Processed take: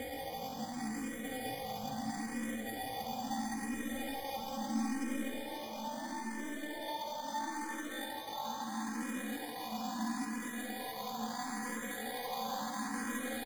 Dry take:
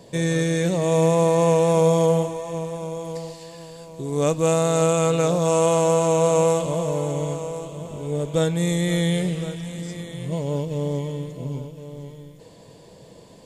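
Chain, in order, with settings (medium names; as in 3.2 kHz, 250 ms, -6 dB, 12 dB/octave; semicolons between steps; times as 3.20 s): high-pass 72 Hz 6 dB/octave; treble shelf 10 kHz -11.5 dB; hum notches 60/120/180/240/300/360/420 Hz; Paulstretch 39×, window 0.05 s, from 0.55 s; sample-and-hold 26×; feedback comb 140 Hz, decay 0.42 s, harmonics all, mix 80%; pitch shift +8 st; on a send: delay 836 ms -7.5 dB; on the sum: algorithmic reverb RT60 4.8 s, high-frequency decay 0.85×, pre-delay 50 ms, DRR 10.5 dB; barber-pole phaser +0.75 Hz; trim -5 dB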